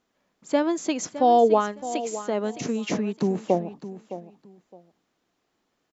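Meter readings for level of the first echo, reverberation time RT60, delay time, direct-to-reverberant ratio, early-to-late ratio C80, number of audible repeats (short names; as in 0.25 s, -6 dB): -13.5 dB, none, 0.613 s, none, none, 2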